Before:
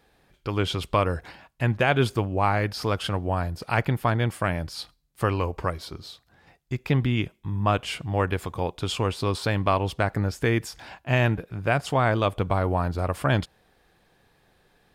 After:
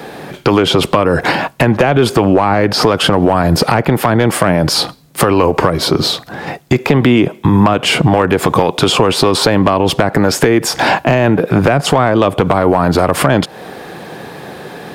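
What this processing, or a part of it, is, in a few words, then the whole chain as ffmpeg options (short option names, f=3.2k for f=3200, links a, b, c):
mastering chain: -filter_complex "[0:a]highpass=200,equalizer=f=150:t=o:w=0.37:g=3.5,acrossover=split=350|1100[a][b][c];[a]acompressor=threshold=-43dB:ratio=4[d];[b]acompressor=threshold=-39dB:ratio=4[e];[c]acompressor=threshold=-41dB:ratio=4[f];[d][e][f]amix=inputs=3:normalize=0,acompressor=threshold=-37dB:ratio=3,asoftclip=type=tanh:threshold=-28.5dB,tiltshelf=f=1.2k:g=4.5,asoftclip=type=hard:threshold=-29.5dB,alimiter=level_in=34dB:limit=-1dB:release=50:level=0:latency=1,asettb=1/sr,asplit=3[g][h][i];[g]atrim=end=2.154[j];[h]atrim=start=2.15:end=2.92,asetpts=PTS-STARTPTS,afade=t=in:d=0.004:c=qsin,afade=t=out:st=0.766:d=0.004:c=qsin,highshelf=f=11k:g=-7.5[k];[i]atrim=start=2.916[l];[j][k]acrossfade=d=0.004:c1=hsin:c2=qsin[m];[m][l]acrossfade=d=0.004:c1=qsin:c2=hsin,volume=-1dB"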